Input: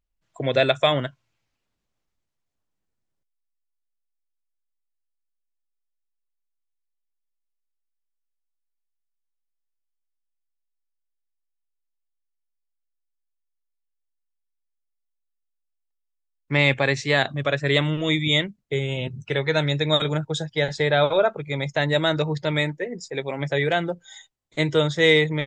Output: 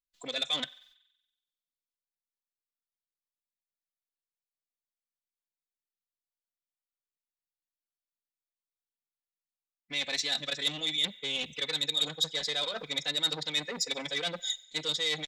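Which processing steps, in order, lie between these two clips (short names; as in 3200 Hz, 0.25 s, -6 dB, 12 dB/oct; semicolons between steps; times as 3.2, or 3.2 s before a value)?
in parallel at -3 dB: limiter -14.5 dBFS, peak gain reduction 10 dB; on the sum: bell 3800 Hz +12.5 dB 1 oct; reverse; compressor 20:1, threshold -21 dBFS, peak gain reduction 18 dB; reverse; gate with hold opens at -56 dBFS; comb 4 ms, depth 96%; thinning echo 78 ms, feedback 75%, high-pass 570 Hz, level -22.5 dB; time stretch by phase-locked vocoder 0.6×; pre-emphasis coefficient 0.8; core saturation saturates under 3200 Hz; gain +2.5 dB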